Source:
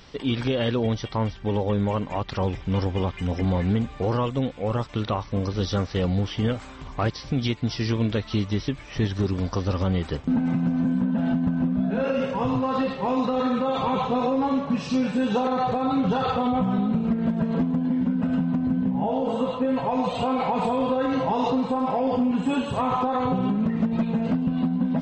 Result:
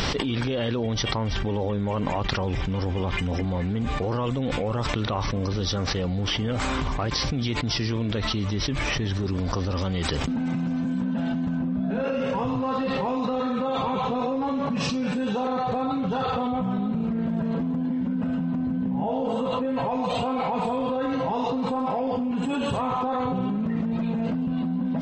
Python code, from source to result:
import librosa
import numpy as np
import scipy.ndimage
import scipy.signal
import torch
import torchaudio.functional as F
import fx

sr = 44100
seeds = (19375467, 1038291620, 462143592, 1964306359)

y = fx.high_shelf(x, sr, hz=2500.0, db=10.0, at=(9.77, 11.57))
y = fx.env_flatten(y, sr, amount_pct=100)
y = y * librosa.db_to_amplitude(-7.0)